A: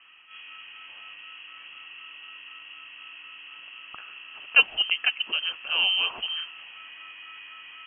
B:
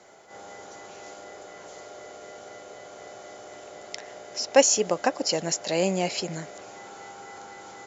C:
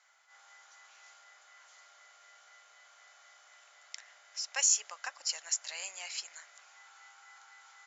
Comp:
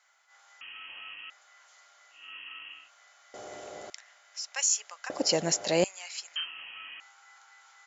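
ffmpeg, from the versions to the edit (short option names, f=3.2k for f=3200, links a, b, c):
-filter_complex "[0:a]asplit=3[a][b][c];[1:a]asplit=2[d][e];[2:a]asplit=6[f][g][h][i][j][k];[f]atrim=end=0.612[l];[a]atrim=start=0.608:end=1.302[m];[g]atrim=start=1.298:end=2.34[n];[b]atrim=start=2.1:end=2.91[o];[h]atrim=start=2.67:end=3.342[p];[d]atrim=start=3.338:end=3.902[q];[i]atrim=start=3.898:end=5.102[r];[e]atrim=start=5.098:end=5.842[s];[j]atrim=start=5.838:end=6.362[t];[c]atrim=start=6.358:end=7.002[u];[k]atrim=start=6.998[v];[l][m]acrossfade=d=0.004:c1=hsin:c2=hsin[w];[w][n]acrossfade=d=0.004:c1=hsin:c2=hsin[x];[x][o]acrossfade=d=0.24:c1=tri:c2=tri[y];[y][p]acrossfade=d=0.24:c1=tri:c2=tri[z];[z][q]acrossfade=d=0.004:c1=hsin:c2=hsin[aa];[aa][r]acrossfade=d=0.004:c1=hsin:c2=hsin[ab];[ab][s]acrossfade=d=0.004:c1=hsin:c2=hsin[ac];[ac][t]acrossfade=d=0.004:c1=hsin:c2=hsin[ad];[ad][u]acrossfade=d=0.004:c1=hsin:c2=hsin[ae];[ae][v]acrossfade=d=0.004:c1=hsin:c2=hsin"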